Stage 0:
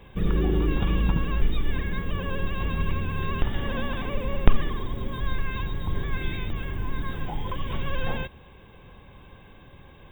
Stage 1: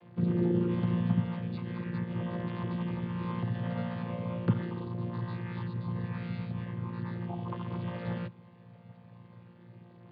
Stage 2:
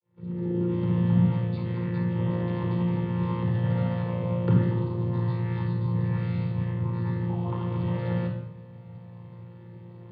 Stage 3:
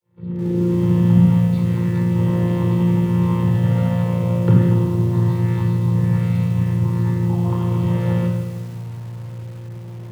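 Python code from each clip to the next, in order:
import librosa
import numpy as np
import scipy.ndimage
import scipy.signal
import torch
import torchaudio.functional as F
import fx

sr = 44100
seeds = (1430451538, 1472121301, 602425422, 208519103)

y1 = fx.chord_vocoder(x, sr, chord='bare fifth', root=46)
y1 = fx.air_absorb(y1, sr, metres=56.0)
y2 = fx.fade_in_head(y1, sr, length_s=1.23)
y2 = fx.room_shoebox(y2, sr, seeds[0], volume_m3=3100.0, walls='furnished', distance_m=4.4)
y3 = fx.low_shelf(y2, sr, hz=75.0, db=7.0)
y3 = fx.echo_filtered(y3, sr, ms=223, feedback_pct=83, hz=2500.0, wet_db=-22.0)
y3 = fx.echo_crushed(y3, sr, ms=160, feedback_pct=55, bits=7, wet_db=-11)
y3 = y3 * librosa.db_to_amplitude(5.5)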